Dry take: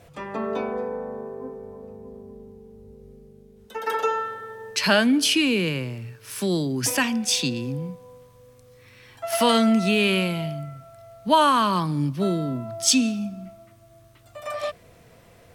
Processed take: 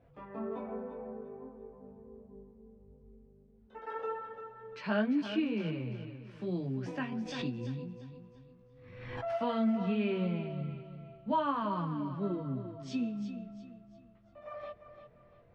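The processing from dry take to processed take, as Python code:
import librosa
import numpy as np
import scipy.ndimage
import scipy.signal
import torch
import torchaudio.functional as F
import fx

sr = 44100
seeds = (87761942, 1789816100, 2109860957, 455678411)

y = fx.high_shelf(x, sr, hz=4800.0, db=-4.5)
y = fx.chorus_voices(y, sr, voices=6, hz=0.39, base_ms=19, depth_ms=4.7, mix_pct=45)
y = fx.spacing_loss(y, sr, db_at_10k=38)
y = fx.echo_feedback(y, sr, ms=345, feedback_pct=35, wet_db=-10.5)
y = fx.pre_swell(y, sr, db_per_s=44.0, at=(7.12, 9.38))
y = y * librosa.db_to_amplitude(-7.0)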